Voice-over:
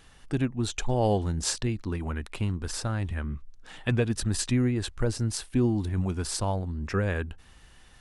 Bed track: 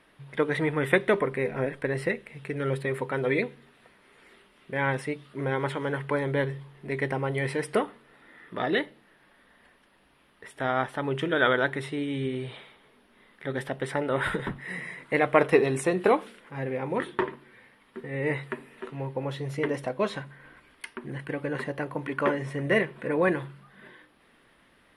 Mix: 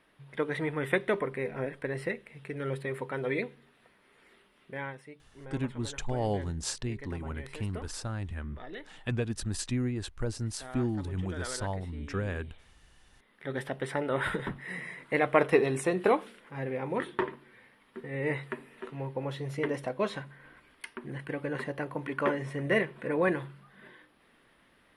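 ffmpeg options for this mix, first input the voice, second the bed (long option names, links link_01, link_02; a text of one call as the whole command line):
ffmpeg -i stem1.wav -i stem2.wav -filter_complex "[0:a]adelay=5200,volume=-6dB[link_01];[1:a]volume=9dB,afade=type=out:start_time=4.64:duration=0.31:silence=0.251189,afade=type=in:start_time=13.04:duration=0.52:silence=0.188365[link_02];[link_01][link_02]amix=inputs=2:normalize=0" out.wav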